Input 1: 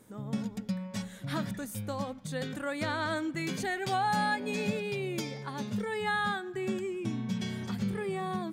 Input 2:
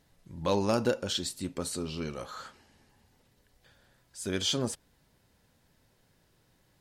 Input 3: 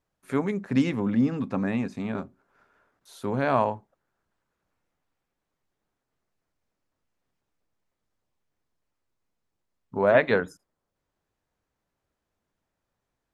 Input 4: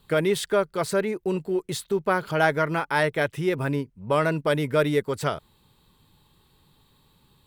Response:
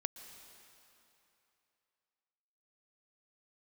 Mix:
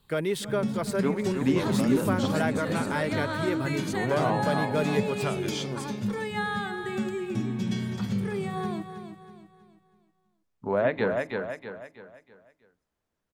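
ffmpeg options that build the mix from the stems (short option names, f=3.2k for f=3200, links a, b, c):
-filter_complex "[0:a]lowshelf=f=320:g=4.5,bandreject=f=47.3:t=h:w=4,bandreject=f=94.6:t=h:w=4,bandreject=f=141.9:t=h:w=4,bandreject=f=189.2:t=h:w=4,bandreject=f=236.5:t=h:w=4,bandreject=f=283.8:t=h:w=4,bandreject=f=331.1:t=h:w=4,bandreject=f=378.4:t=h:w=4,bandreject=f=425.7:t=h:w=4,bandreject=f=473:t=h:w=4,bandreject=f=520.3:t=h:w=4,bandreject=f=567.6:t=h:w=4,bandreject=f=614.9:t=h:w=4,bandreject=f=662.2:t=h:w=4,bandreject=f=709.5:t=h:w=4,bandreject=f=756.8:t=h:w=4,bandreject=f=804.1:t=h:w=4,bandreject=f=851.4:t=h:w=4,bandreject=f=898.7:t=h:w=4,bandreject=f=946:t=h:w=4,bandreject=f=993.3:t=h:w=4,bandreject=f=1.0406k:t=h:w=4,bandreject=f=1.0879k:t=h:w=4,bandreject=f=1.1352k:t=h:w=4,bandreject=f=1.1825k:t=h:w=4,bandreject=f=1.2298k:t=h:w=4,bandreject=f=1.2771k:t=h:w=4,adelay=300,volume=1dB,asplit=2[a][b];[b]volume=-9.5dB[c];[1:a]adelay=1100,volume=-6dB[d];[2:a]adelay=700,volume=-2.5dB,asplit=2[e][f];[f]volume=-6dB[g];[3:a]volume=-5dB,asplit=2[h][i];[i]volume=-19.5dB[j];[c][g][j]amix=inputs=3:normalize=0,aecho=0:1:322|644|966|1288|1610:1|0.39|0.152|0.0593|0.0231[k];[a][d][e][h][k]amix=inputs=5:normalize=0,acrossover=split=490[l][m];[m]acompressor=threshold=-29dB:ratio=2[n];[l][n]amix=inputs=2:normalize=0"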